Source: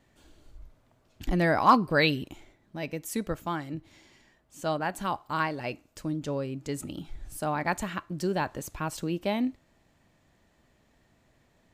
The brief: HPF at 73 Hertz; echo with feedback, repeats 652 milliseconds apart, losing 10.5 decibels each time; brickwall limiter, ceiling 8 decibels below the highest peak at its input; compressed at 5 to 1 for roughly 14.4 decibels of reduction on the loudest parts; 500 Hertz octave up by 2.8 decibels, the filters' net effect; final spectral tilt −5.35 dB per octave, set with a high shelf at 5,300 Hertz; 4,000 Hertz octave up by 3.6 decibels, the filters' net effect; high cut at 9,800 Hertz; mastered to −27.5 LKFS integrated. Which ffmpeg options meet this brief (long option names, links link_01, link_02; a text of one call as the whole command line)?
ffmpeg -i in.wav -af "highpass=73,lowpass=9800,equalizer=frequency=500:width_type=o:gain=3.5,equalizer=frequency=4000:width_type=o:gain=7,highshelf=frequency=5300:gain=-7.5,acompressor=threshold=-29dB:ratio=5,alimiter=level_in=2.5dB:limit=-24dB:level=0:latency=1,volume=-2.5dB,aecho=1:1:652|1304|1956:0.299|0.0896|0.0269,volume=10.5dB" out.wav